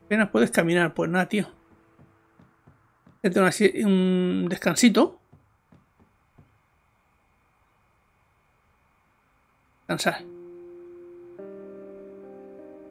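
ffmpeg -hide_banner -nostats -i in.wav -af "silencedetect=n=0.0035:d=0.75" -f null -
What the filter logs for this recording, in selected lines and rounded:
silence_start: 6.41
silence_end: 9.89 | silence_duration: 3.47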